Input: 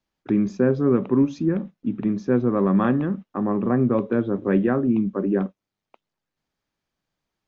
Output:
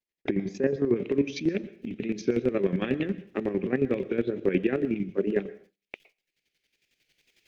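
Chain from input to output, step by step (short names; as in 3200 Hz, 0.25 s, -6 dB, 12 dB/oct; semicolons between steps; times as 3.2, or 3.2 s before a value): recorder AGC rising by 12 dB/s; wow and flutter 100 cents; compressor 1.5:1, threshold -52 dBFS, peak gain reduction 13.5 dB; bell 420 Hz +11 dB 0.88 oct; chopper 11 Hz, depth 65%, duty 35%; plate-style reverb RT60 0.53 s, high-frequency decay 0.85×, pre-delay 0.105 s, DRR 17.5 dB; gate with hold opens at -45 dBFS; resonant high shelf 1600 Hz +7 dB, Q 3, from 0.96 s +13 dB; gain +4.5 dB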